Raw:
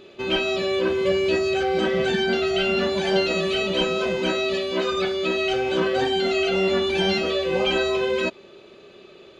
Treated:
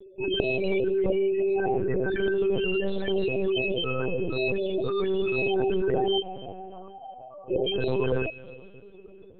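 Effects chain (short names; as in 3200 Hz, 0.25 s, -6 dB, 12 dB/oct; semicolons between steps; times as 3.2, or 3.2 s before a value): 2.53–3.07 HPF 130 Hz -> 430 Hz 6 dB/oct; limiter -16.5 dBFS, peak gain reduction 7.5 dB; 6.2–7.5 vocal tract filter a; loudest bins only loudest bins 8; reverb RT60 3.0 s, pre-delay 85 ms, DRR 17 dB; LPC vocoder at 8 kHz pitch kept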